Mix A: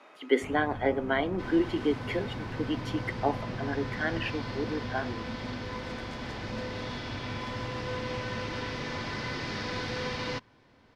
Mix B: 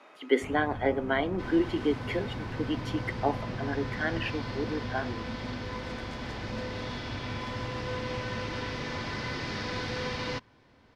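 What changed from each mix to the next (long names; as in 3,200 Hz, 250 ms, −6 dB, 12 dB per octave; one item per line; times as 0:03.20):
master: add parametric band 62 Hz +3.5 dB 0.96 octaves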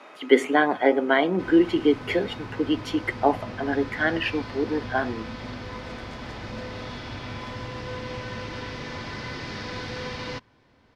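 speech +7.5 dB
first sound: add high-pass filter 340 Hz 12 dB per octave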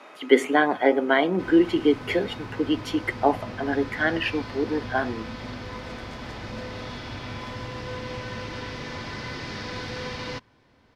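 master: add high-shelf EQ 11,000 Hz +7 dB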